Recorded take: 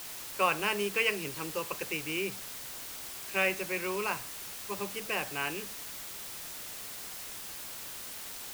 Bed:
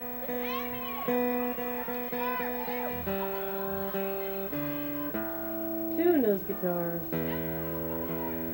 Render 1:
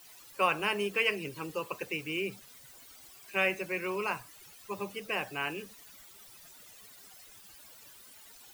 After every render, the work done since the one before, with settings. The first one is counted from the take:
broadband denoise 15 dB, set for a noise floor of −43 dBFS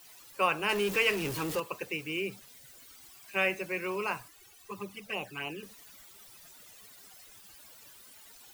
0:00.69–0:01.60: converter with a step at zero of −32.5 dBFS
0:02.47–0:03.34: parametric band 1,400 Hz → 370 Hz −12.5 dB 0.28 octaves
0:04.28–0:05.63: flanger swept by the level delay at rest 3.3 ms, full sweep at −29.5 dBFS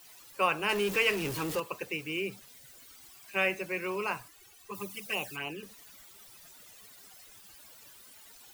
0:04.73–0:05.35: high-shelf EQ 6,000 Hz → 3,400 Hz +12 dB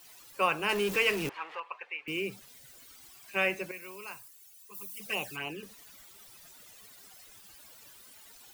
0:01.29–0:02.08: Chebyshev band-pass filter 840–2,400 Hz
0:03.71–0:05.00: first-order pre-emphasis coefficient 0.8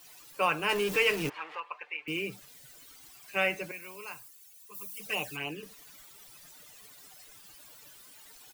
comb filter 6.7 ms, depth 40%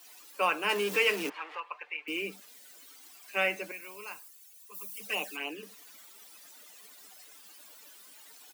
Butterworth high-pass 190 Hz 72 dB per octave
low-shelf EQ 330 Hz −2.5 dB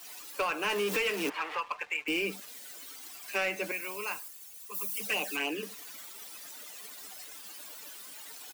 downward compressor 4 to 1, threshold −33 dBFS, peak gain reduction 10.5 dB
leveller curve on the samples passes 2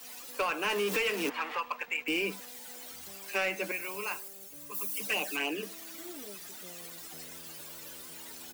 mix in bed −22.5 dB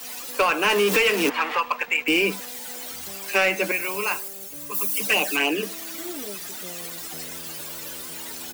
level +10.5 dB

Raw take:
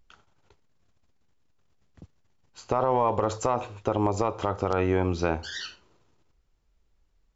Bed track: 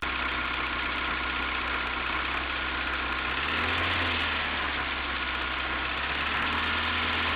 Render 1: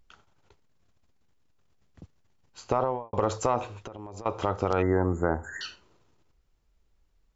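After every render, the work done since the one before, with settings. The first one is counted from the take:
0:02.73–0:03.13: fade out and dull
0:03.79–0:04.26: downward compressor 20 to 1, threshold −36 dBFS
0:04.82–0:05.61: linear-phase brick-wall band-stop 2,100–6,600 Hz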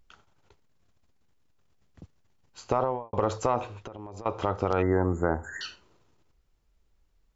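0:02.85–0:04.92: high-frequency loss of the air 54 metres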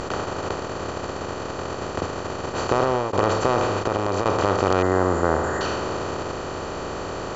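compressor on every frequency bin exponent 0.2
level that may rise only so fast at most 330 dB per second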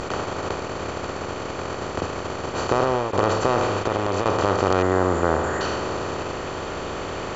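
mix in bed track −13.5 dB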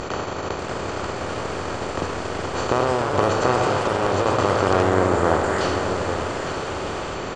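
single-tap delay 859 ms −8 dB
delay with pitch and tempo change per echo 591 ms, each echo +2 semitones, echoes 2, each echo −6 dB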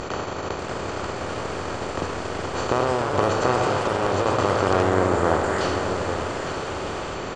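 level −1.5 dB

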